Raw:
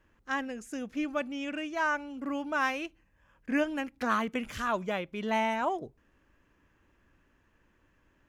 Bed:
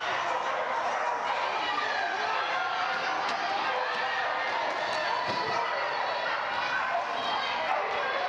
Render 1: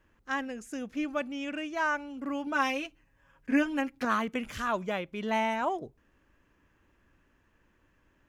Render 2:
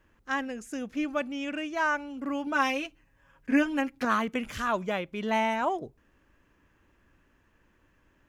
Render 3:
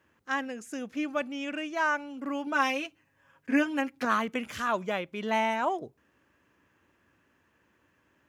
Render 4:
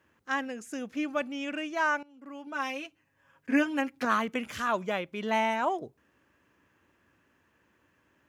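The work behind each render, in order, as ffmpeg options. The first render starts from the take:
-filter_complex "[0:a]asettb=1/sr,asplit=3[s0][s1][s2];[s0]atrim=end=2.464[s3];[s1]atrim=start=2.46:end=4.05,asetpts=PTS-STARTPTS,afade=t=in:d=0.004:c=qsin,afade=t=out:st=1.586:d=0.004:c=qsin,aecho=1:1:7.3:0.69,atrim=end_sample=70119[s4];[s2]atrim=start=4.046[s5];[s3][s4]acrossfade=d=0.004:c1=hsin:c2=qsin[s6];[s6][s5]acrossfade=d=0.004:c1=qsin:c2=hsin"
-af "volume=1.26"
-af "highpass=f=73:w=0.5412,highpass=f=73:w=1.3066,lowshelf=f=190:g=-5.5"
-filter_complex "[0:a]asplit=2[s0][s1];[s0]atrim=end=2.03,asetpts=PTS-STARTPTS,afade=t=out:st=2.026:d=0.004:c=hsin:silence=0.11885[s2];[s1]atrim=start=2.03,asetpts=PTS-STARTPTS,afade=t=in:d=1.52:silence=0.11885[s3];[s2][s3]concat=n=2:v=0:a=1"

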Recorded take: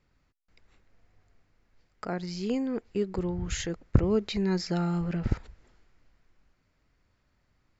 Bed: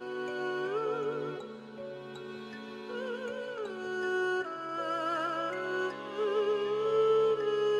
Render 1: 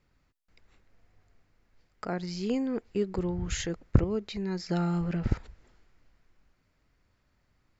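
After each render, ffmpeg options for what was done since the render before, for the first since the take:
-filter_complex "[0:a]asplit=3[s0][s1][s2];[s0]atrim=end=4.042[s3];[s1]atrim=start=4.038:end=4.692,asetpts=PTS-STARTPTS,volume=0.531[s4];[s2]atrim=start=4.688[s5];[s3][s4]acrossfade=d=0.004:c1=hsin:c2=hsin[s6];[s6][s5]acrossfade=d=0.004:c1=hsin:c2=hsin"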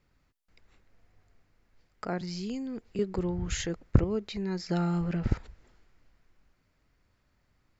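-filter_complex "[0:a]asettb=1/sr,asplit=3[s0][s1][s2];[s0]atrim=end=2.214[s3];[s1]atrim=start=2.21:end=2.99,asetpts=PTS-STARTPTS,afade=t=in:d=0.004:c=qsin,afade=t=out:st=0.776:d=0.004:c=qsin,acrossover=split=220|3000[s4][s5][s6];[s5]acompressor=threshold=0.00891:ratio=6:attack=3.2:release=140:knee=2.83:detection=peak[s7];[s4][s7][s6]amix=inputs=3:normalize=0[s8];[s2]atrim=start=2.986[s9];[s3][s8]acrossfade=d=0.004:c1=hsin:c2=qsin[s10];[s10][s9]acrossfade=d=0.004:c1=qsin:c2=hsin"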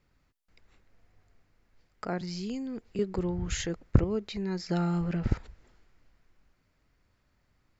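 -af anull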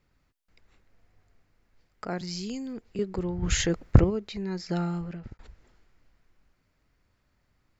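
-filter_complex "[0:a]asettb=1/sr,asplit=3[s0][s1][s2];[s0]atrim=end=2.104[s3];[s1]atrim=start=2.1:end=2.73,asetpts=PTS-STARTPTS,afade=t=in:d=0.004:c=qsin,afade=t=out:st=0.626:d=0.004:c=qsin,highshelf=f=4800:g=10.5[s4];[s2]atrim=start=2.726[s5];[s3][s4]acrossfade=d=0.004:c1=hsin:c2=qsin[s6];[s6][s5]acrossfade=d=0.004:c1=qsin:c2=hsin,asplit=3[s7][s8][s9];[s7]afade=t=out:st=3.42:d=0.02[s10];[s8]acontrast=80,afade=t=in:st=3.42:d=0.02,afade=t=out:st=4.09:d=0.02[s11];[s9]afade=t=in:st=4.09:d=0.02[s12];[s10][s11][s12]amix=inputs=3:normalize=0,asplit=2[s13][s14];[s13]atrim=end=5.39,asetpts=PTS-STARTPTS,afade=t=out:st=4.79:d=0.6[s15];[s14]atrim=start=5.39,asetpts=PTS-STARTPTS,afade=t=in:d=0.004:c=hsin[s16];[s15][s16]concat=n=2:v=0:a=1"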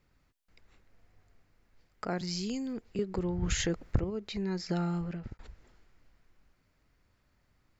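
-af "acompressor=threshold=0.0398:ratio=3"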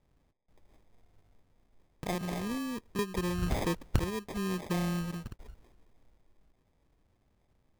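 -af "acrusher=samples=31:mix=1:aa=0.000001"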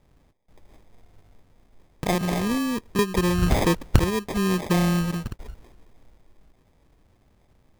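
-af "volume=3.35"

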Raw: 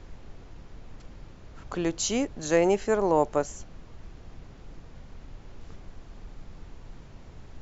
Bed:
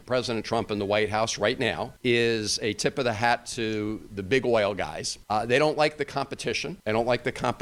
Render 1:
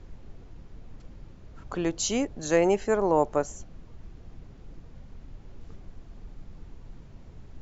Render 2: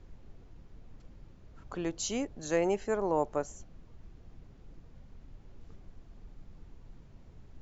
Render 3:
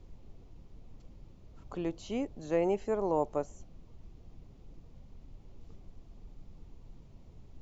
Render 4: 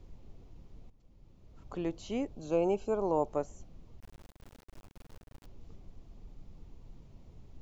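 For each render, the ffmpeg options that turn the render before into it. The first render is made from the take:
-af "afftdn=nr=6:nf=-48"
-af "volume=0.473"
-filter_complex "[0:a]acrossover=split=3000[s0][s1];[s1]acompressor=threshold=0.00126:ratio=4:attack=1:release=60[s2];[s0][s2]amix=inputs=2:normalize=0,equalizer=f=1600:t=o:w=0.65:g=-9"
-filter_complex "[0:a]asettb=1/sr,asplit=3[s0][s1][s2];[s0]atrim=end=2.344[s3];[s1]atrim=start=2.34:end=3.28,asetpts=PTS-STARTPTS,afade=t=in:d=0.004:c=qsin,afade=t=out:st=0.936:d=0.004:c=qsin,asuperstop=centerf=1900:order=12:qfactor=3.1[s4];[s2]atrim=start=3.276[s5];[s3][s4]acrossfade=d=0.004:c1=hsin:c2=qsin[s6];[s6][s5]acrossfade=d=0.004:c1=qsin:c2=hsin,asettb=1/sr,asplit=3[s7][s8][s9];[s7]atrim=end=4.004[s10];[s8]atrim=start=4:end=5.46,asetpts=PTS-STARTPTS,afade=t=in:d=0.004:c=qsin,afade=t=out:st=1.456:d=0.004:c=qsin,acrusher=bits=6:dc=4:mix=0:aa=0.000001[s11];[s9]atrim=start=5.456[s12];[s10][s11]acrossfade=d=0.004:c1=hsin:c2=qsin[s13];[s13][s12]acrossfade=d=0.004:c1=qsin:c2=hsin,asplit=2[s14][s15];[s14]atrim=end=0.9,asetpts=PTS-STARTPTS,afade=t=out:st=0.896:d=0.004:c=hsin:silence=0.158489[s16];[s15]atrim=start=0.9,asetpts=PTS-STARTPTS,afade=t=in:d=0.87:silence=0.158489[s17];[s16][s17]concat=n=2:v=0:a=1"

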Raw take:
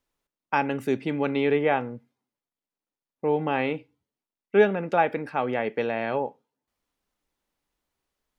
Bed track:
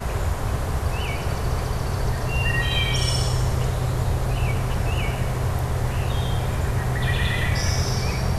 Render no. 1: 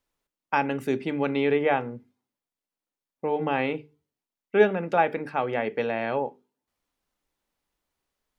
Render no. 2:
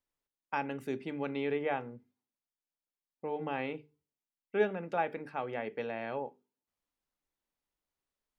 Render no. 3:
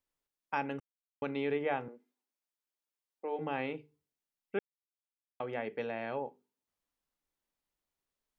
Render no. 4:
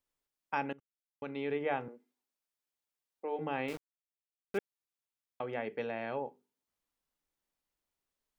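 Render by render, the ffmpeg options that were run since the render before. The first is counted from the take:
-af "bandreject=f=50:t=h:w=6,bandreject=f=100:t=h:w=6,bandreject=f=150:t=h:w=6,bandreject=f=200:t=h:w=6,bandreject=f=250:t=h:w=6,bandreject=f=300:t=h:w=6,bandreject=f=350:t=h:w=6,bandreject=f=400:t=h:w=6,bandreject=f=450:t=h:w=6"
-af "volume=0.316"
-filter_complex "[0:a]asettb=1/sr,asplit=3[s0][s1][s2];[s0]atrim=end=1.884[s3];[s1]atrim=start=1.88:end=3.39,asetpts=PTS-STARTPTS,afade=t=in:d=0.004:c=qsin,afade=t=out:st=1.506:d=0.004:c=qsin,highpass=f=290:w=0.5412,highpass=f=290:w=1.3066[s4];[s2]atrim=start=3.386[s5];[s3][s4]acrossfade=d=0.004:c1=hsin:c2=qsin[s6];[s6][s5]acrossfade=d=0.004:c1=qsin:c2=hsin,asplit=5[s7][s8][s9][s10][s11];[s7]atrim=end=0.8,asetpts=PTS-STARTPTS,afade=t=out:st=0.796:d=0.004:c=hsin[s12];[s8]atrim=start=0.8:end=1.22,asetpts=PTS-STARTPTS,volume=0[s13];[s9]atrim=start=1.22:end=4.59,asetpts=PTS-STARTPTS,afade=t=in:d=0.004:c=hsin,afade=t=out:st=3.366:d=0.004:c=hsin[s14];[s10]atrim=start=4.59:end=5.4,asetpts=PTS-STARTPTS,volume=0[s15];[s11]atrim=start=5.4,asetpts=PTS-STARTPTS,afade=t=in:d=0.004:c=hsin[s16];[s12][s13][s14][s15][s16]concat=n=5:v=0:a=1"
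-filter_complex "[0:a]asettb=1/sr,asplit=3[s0][s1][s2];[s0]atrim=end=3.684[s3];[s1]atrim=start=3.68:end=4.58,asetpts=PTS-STARTPTS,afade=t=in:d=0.004:c=qsin,afade=t=out:st=0.896:d=0.004:c=qsin,aeval=exprs='val(0)*gte(abs(val(0)),0.00841)':c=same[s4];[s2]atrim=start=4.576[s5];[s3][s4]acrossfade=d=0.004:c1=hsin:c2=qsin[s6];[s6][s5]acrossfade=d=0.004:c1=qsin:c2=hsin,asplit=2[s7][s8];[s7]atrim=end=0.73,asetpts=PTS-STARTPTS,afade=t=out:st=0.726:d=0.004:c=hsin:silence=0.0891251[s9];[s8]atrim=start=0.73,asetpts=PTS-STARTPTS,afade=t=in:d=1.01:silence=0.0891251[s10];[s9][s10]concat=n=2:v=0:a=1"

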